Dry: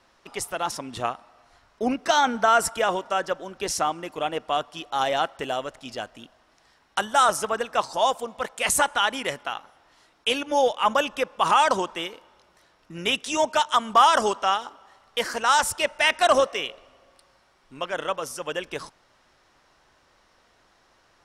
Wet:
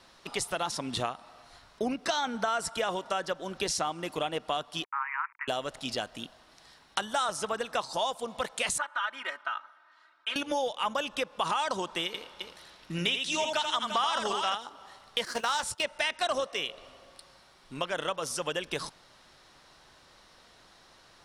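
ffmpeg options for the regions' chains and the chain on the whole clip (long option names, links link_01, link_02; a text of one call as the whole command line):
ffmpeg -i in.wav -filter_complex "[0:a]asettb=1/sr,asplit=3[link_01][link_02][link_03];[link_01]atrim=end=4.844[link_04];[link_02]atrim=start=4.84:end=5.48,asetpts=PTS-STARTPTS,afade=type=in:duration=0.004:curve=qsin,afade=type=out:start_time=0.636:duration=0.004:curve=qsin,aeval=exprs='val(0)*gte(abs(val(0)),0.00794)':channel_layout=same,asuperpass=centerf=1500:order=20:qfactor=1[link_05];[link_03]atrim=start=5.476[link_06];[link_04][link_05]acrossfade=duration=0.004:curve1=hsin:curve2=qsin[link_07];[link_07][link_06]acrossfade=duration=0.004:curve1=qsin:curve2=hsin,asettb=1/sr,asplit=3[link_08][link_09][link_10];[link_08]atrim=end=8.784[link_11];[link_09]atrim=start=8.78:end=10.36,asetpts=PTS-STARTPTS,afade=type=in:duration=0.004:curve=qsin,afade=type=out:start_time=1.576:duration=0.004:curve=qsin,bandpass=frequency=1400:width_type=q:width=3.2,aecho=1:1:3.2:0.94,atrim=end_sample=69678[link_12];[link_10]atrim=start=10.356[link_13];[link_11][link_12]acrossfade=duration=0.004:curve1=hsin:curve2=qsin[link_14];[link_14][link_13]acrossfade=duration=0.004:curve1=qsin:curve2=hsin,asettb=1/sr,asplit=3[link_15][link_16][link_17];[link_15]atrim=end=12.064[link_18];[link_16]atrim=start=12.06:end=14.55,asetpts=PTS-STARTPTS,afade=type=in:duration=0.004:curve=qsin,afade=type=out:start_time=2.486:duration=0.004:curve=qsin,equalizer=frequency=2700:width=0.83:gain=4.5,aecho=1:1:82|344:0.531|0.299,atrim=end_sample=109809[link_19];[link_17]atrim=start=14.546[link_20];[link_18][link_19]acrossfade=duration=0.004:curve1=hsin:curve2=qsin[link_21];[link_21][link_20]acrossfade=duration=0.004:curve1=qsin:curve2=hsin,asettb=1/sr,asplit=3[link_22][link_23][link_24];[link_22]atrim=end=15.254[link_25];[link_23]atrim=start=15.25:end=15.83,asetpts=PTS-STARTPTS,afade=type=in:duration=0.004:curve=qsin,afade=type=out:start_time=0.576:duration=0.004:curve=qsin,agate=range=-14dB:threshold=-33dB:ratio=16:release=100:detection=peak,acrusher=bits=4:mode=log:mix=0:aa=0.000001,asplit=2[link_26][link_27];[link_27]adelay=17,volume=-14dB[link_28];[link_26][link_28]amix=inputs=2:normalize=0,atrim=end_sample=25578[link_29];[link_24]atrim=start=15.826[link_30];[link_25][link_29]acrossfade=duration=0.004:curve1=hsin:curve2=qsin[link_31];[link_31][link_30]acrossfade=duration=0.004:curve1=qsin:curve2=hsin,acrossover=split=8900[link_32][link_33];[link_33]acompressor=threshold=-52dB:ratio=4:attack=1:release=60[link_34];[link_32][link_34]amix=inputs=2:normalize=0,equalizer=frequency=160:width_type=o:width=0.67:gain=4,equalizer=frequency=4000:width_type=o:width=0.67:gain=7,equalizer=frequency=10000:width_type=o:width=0.67:gain=6,acompressor=threshold=-31dB:ratio=4,volume=2dB" out.wav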